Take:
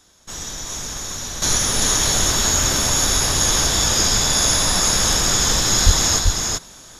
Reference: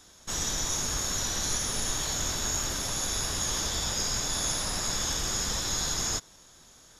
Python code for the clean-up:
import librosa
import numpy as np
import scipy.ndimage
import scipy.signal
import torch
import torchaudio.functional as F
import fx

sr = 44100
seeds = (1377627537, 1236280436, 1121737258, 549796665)

y = fx.fix_deplosive(x, sr, at_s=(5.85,))
y = fx.fix_echo_inverse(y, sr, delay_ms=388, level_db=-3.5)
y = fx.gain(y, sr, db=fx.steps((0.0, 0.0), (1.42, -11.0)))